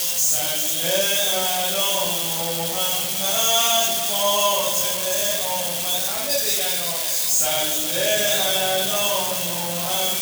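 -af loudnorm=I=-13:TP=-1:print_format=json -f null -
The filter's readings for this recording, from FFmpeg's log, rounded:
"input_i" : "-19.1",
"input_tp" : "-6.6",
"input_lra" : "0.9",
"input_thresh" : "-29.1",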